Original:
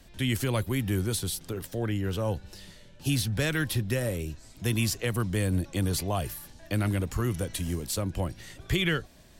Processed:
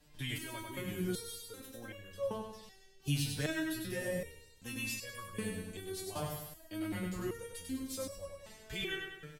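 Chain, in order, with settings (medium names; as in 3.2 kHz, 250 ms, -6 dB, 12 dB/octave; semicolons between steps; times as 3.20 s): feedback delay 98 ms, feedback 47%, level -4 dB; resonator arpeggio 2.6 Hz 150–560 Hz; trim +3 dB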